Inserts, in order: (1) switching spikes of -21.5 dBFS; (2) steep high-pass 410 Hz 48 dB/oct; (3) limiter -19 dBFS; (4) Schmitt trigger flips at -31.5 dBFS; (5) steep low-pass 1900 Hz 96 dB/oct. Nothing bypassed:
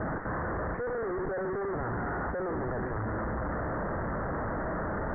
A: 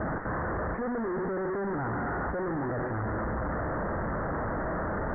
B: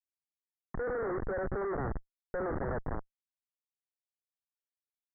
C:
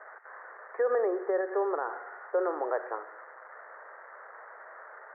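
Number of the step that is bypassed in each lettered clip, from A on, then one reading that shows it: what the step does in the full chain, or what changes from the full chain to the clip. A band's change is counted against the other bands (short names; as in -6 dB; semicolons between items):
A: 2, loudness change +1.5 LU; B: 1, distortion -12 dB; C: 4, crest factor change +9.0 dB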